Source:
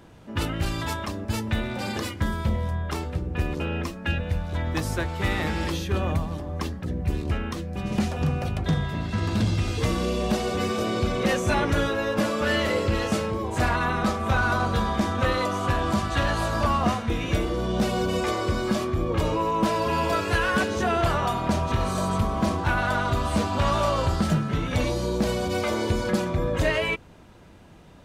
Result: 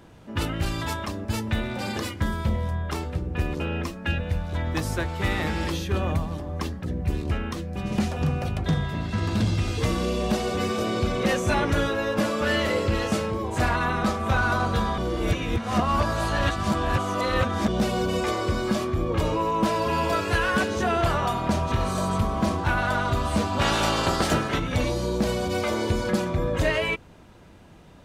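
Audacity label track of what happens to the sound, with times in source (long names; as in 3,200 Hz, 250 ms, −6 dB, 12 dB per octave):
14.980000	17.680000	reverse
23.600000	24.580000	ceiling on every frequency bin ceiling under each frame's peak by 17 dB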